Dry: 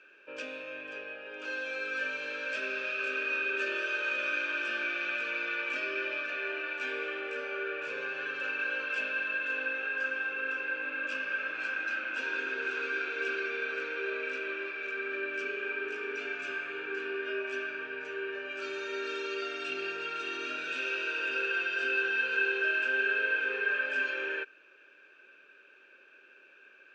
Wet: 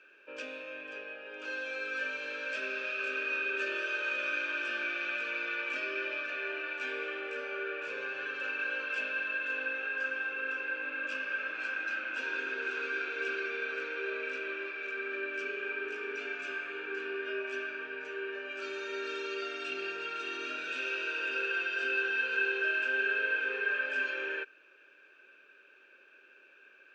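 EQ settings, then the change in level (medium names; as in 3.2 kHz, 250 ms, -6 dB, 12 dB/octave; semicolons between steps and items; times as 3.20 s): high-pass 160 Hz 12 dB/octave; -1.5 dB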